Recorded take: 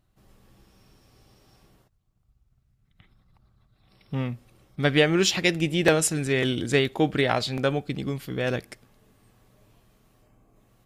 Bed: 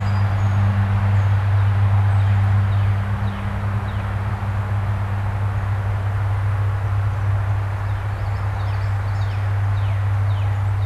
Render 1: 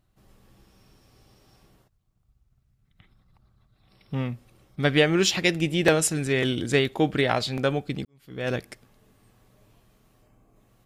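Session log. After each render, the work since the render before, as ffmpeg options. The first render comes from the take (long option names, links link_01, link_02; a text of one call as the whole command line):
ffmpeg -i in.wav -filter_complex "[0:a]asplit=2[link_01][link_02];[link_01]atrim=end=8.05,asetpts=PTS-STARTPTS,afade=type=out:start_time=8.046:duration=0.004:curve=hsin[link_03];[link_02]atrim=start=8.05,asetpts=PTS-STARTPTS,afade=type=in:duration=0.46:curve=qua[link_04];[link_03][link_04]concat=n=2:v=0:a=1" out.wav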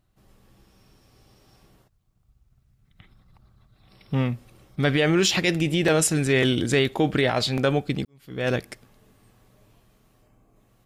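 ffmpeg -i in.wav -af "dynaudnorm=framelen=550:gausssize=9:maxgain=11.5dB,alimiter=limit=-11dB:level=0:latency=1:release=31" out.wav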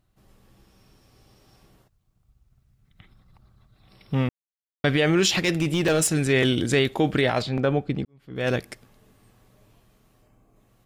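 ffmpeg -i in.wav -filter_complex "[0:a]asettb=1/sr,asplit=3[link_01][link_02][link_03];[link_01]atrim=end=5.354[link_04];[link_02]atrim=start=5.35:end=6.13,asetpts=PTS-STARTPTS,afade=type=in:duration=0.004:curve=qsin,afade=type=out:start_time=0.776:duration=0.004:curve=qsin,volume=16dB,asoftclip=hard,volume=-16dB[link_05];[link_03]atrim=start=6.126[link_06];[link_04][link_05]acrossfade=duration=0.004:curve1=hsin:curve2=qsin[link_07];[link_07][link_06]acrossfade=duration=0.004:curve1=qsin:curve2=hsin,asettb=1/sr,asplit=3[link_08][link_09][link_10];[link_08]atrim=end=7.424[link_11];[link_09]atrim=start=7.42:end=8.36,asetpts=PTS-STARTPTS,afade=type=in:duration=0.004:curve=qsin,afade=type=out:start_time=0.936:duration=0.004:curve=qsin,lowpass=frequency=1500:poles=1[link_12];[link_10]atrim=start=8.356[link_13];[link_11][link_12]acrossfade=duration=0.004:curve1=hsin:curve2=qsin[link_14];[link_14][link_13]acrossfade=duration=0.004:curve1=qsin:curve2=hsin,asplit=3[link_15][link_16][link_17];[link_15]atrim=end=4.29,asetpts=PTS-STARTPTS,afade=type=out:start_time=4.286:duration=0.004:curve=hsin[link_18];[link_16]atrim=start=4.29:end=4.84,asetpts=PTS-STARTPTS,volume=0[link_19];[link_17]atrim=start=4.84,asetpts=PTS-STARTPTS,afade=type=in:duration=0.004:curve=hsin[link_20];[link_18][link_19][link_20]concat=n=3:v=0:a=1" out.wav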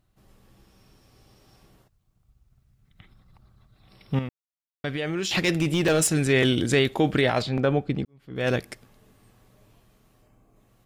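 ffmpeg -i in.wav -filter_complex "[0:a]asplit=3[link_01][link_02][link_03];[link_01]atrim=end=4.192[link_04];[link_02]atrim=start=4.188:end=5.312,asetpts=PTS-STARTPTS,volume=-8.5dB[link_05];[link_03]atrim=start=5.308[link_06];[link_04][link_05]acrossfade=duration=0.004:curve1=hsin:curve2=hsin[link_07];[link_07][link_06]acrossfade=duration=0.004:curve1=hsin:curve2=hsin" out.wav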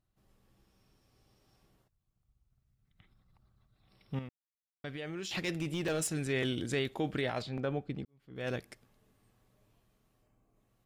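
ffmpeg -i in.wav -af "volume=-12dB" out.wav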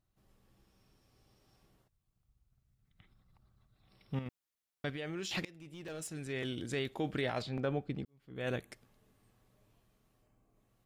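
ffmpeg -i in.wav -filter_complex "[0:a]asettb=1/sr,asplit=3[link_01][link_02][link_03];[link_01]atrim=end=8.324[link_04];[link_02]atrim=start=8.32:end=8.72,asetpts=PTS-STARTPTS,afade=type=in:duration=0.004:curve=qsin,afade=type=out:start_time=0.396:duration=0.004:curve=qsin,asuperstop=centerf=5100:order=4:qfactor=2.7[link_05];[link_03]atrim=start=8.716[link_06];[link_04][link_05]acrossfade=duration=0.004:curve1=hsin:curve2=qsin[link_07];[link_07][link_06]acrossfade=duration=0.004:curve1=qsin:curve2=hsin,asplit=4[link_08][link_09][link_10][link_11];[link_08]atrim=end=4.262[link_12];[link_09]atrim=start=4.258:end=4.902,asetpts=PTS-STARTPTS,volume=4.5dB[link_13];[link_10]atrim=start=4.898:end=5.45,asetpts=PTS-STARTPTS,afade=type=out:start_time=0.548:duration=0.004:curve=hsin:silence=0.0707946[link_14];[link_11]atrim=start=5.45,asetpts=PTS-STARTPTS,afade=type=in:duration=2.05:silence=0.0707946[link_15];[link_12][link_13]acrossfade=duration=0.004:curve1=hsin:curve2=hsin[link_16];[link_14][link_15]concat=n=2:v=0:a=1[link_17];[link_16][link_17]acrossfade=duration=0.004:curve1=hsin:curve2=hsin" out.wav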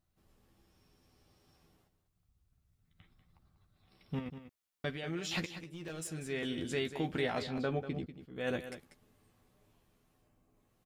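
ffmpeg -i in.wav -filter_complex "[0:a]asplit=2[link_01][link_02];[link_02]adelay=12,volume=-6dB[link_03];[link_01][link_03]amix=inputs=2:normalize=0,aecho=1:1:192:0.266" out.wav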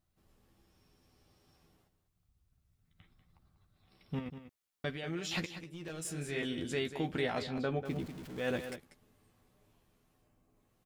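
ffmpeg -i in.wav -filter_complex "[0:a]asettb=1/sr,asplit=3[link_01][link_02][link_03];[link_01]atrim=end=6.024[link_04];[link_02]atrim=start=6.02:end=6.42,asetpts=PTS-STARTPTS,afade=type=in:duration=0.004:curve=qsin,afade=type=out:start_time=0.396:duration=0.004:curve=qsin,asplit=2[link_05][link_06];[link_06]adelay=28,volume=-2dB[link_07];[link_05][link_07]amix=inputs=2:normalize=0,atrim=end_sample=17640[link_08];[link_03]atrim=start=6.416[link_09];[link_04][link_08]acrossfade=duration=0.004:curve1=hsin:curve2=qsin[link_10];[link_10][link_09]acrossfade=duration=0.004:curve1=qsin:curve2=hsin,asettb=1/sr,asplit=3[link_11][link_12][link_13];[link_11]atrim=end=7.854[link_14];[link_12]atrim=start=7.85:end=8.76,asetpts=PTS-STARTPTS,afade=type=in:duration=0.004:curve=qsin,afade=type=out:start_time=0.906:duration=0.004:curve=qsin,aeval=exprs='val(0)+0.5*0.00531*sgn(val(0))':channel_layout=same[link_15];[link_13]atrim=start=8.756[link_16];[link_14][link_15]acrossfade=duration=0.004:curve1=hsin:curve2=qsin[link_17];[link_17][link_16]acrossfade=duration=0.004:curve1=qsin:curve2=hsin" out.wav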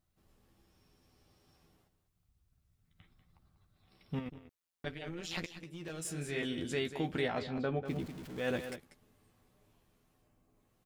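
ffmpeg -i in.wav -filter_complex "[0:a]asettb=1/sr,asplit=3[link_01][link_02][link_03];[link_01]atrim=end=4.294[link_04];[link_02]atrim=start=4.29:end=5.63,asetpts=PTS-STARTPTS,afade=type=in:duration=0.004:curve=qsin,afade=type=out:start_time=1.336:duration=0.004:curve=qsin,tremolo=f=170:d=0.824[link_05];[link_03]atrim=start=5.626[link_06];[link_04][link_05]acrossfade=duration=0.004:curve1=hsin:curve2=qsin[link_07];[link_07][link_06]acrossfade=duration=0.004:curve1=qsin:curve2=hsin,asettb=1/sr,asplit=3[link_08][link_09][link_10];[link_08]atrim=end=7.284[link_11];[link_09]atrim=start=7.28:end=7.88,asetpts=PTS-STARTPTS,afade=type=in:duration=0.004:curve=qsin,afade=type=out:start_time=0.596:duration=0.004:curve=qsin,aemphasis=mode=reproduction:type=50kf[link_12];[link_10]atrim=start=7.876[link_13];[link_11][link_12]acrossfade=duration=0.004:curve1=hsin:curve2=qsin[link_14];[link_14][link_13]acrossfade=duration=0.004:curve1=qsin:curve2=hsin" out.wav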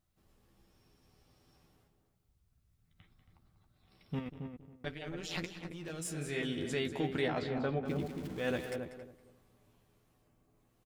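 ffmpeg -i in.wav -filter_complex "[0:a]asplit=2[link_01][link_02];[link_02]adelay=274,lowpass=frequency=1000:poles=1,volume=-5.5dB,asplit=2[link_03][link_04];[link_04]adelay=274,lowpass=frequency=1000:poles=1,volume=0.2,asplit=2[link_05][link_06];[link_06]adelay=274,lowpass=frequency=1000:poles=1,volume=0.2[link_07];[link_01][link_03][link_05][link_07]amix=inputs=4:normalize=0" out.wav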